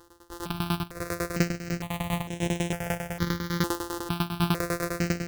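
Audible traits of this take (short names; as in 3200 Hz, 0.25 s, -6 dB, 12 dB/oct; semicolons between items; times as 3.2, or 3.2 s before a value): a buzz of ramps at a fixed pitch in blocks of 256 samples; tremolo saw down 10 Hz, depth 95%; notches that jump at a steady rate 2.2 Hz 630–4600 Hz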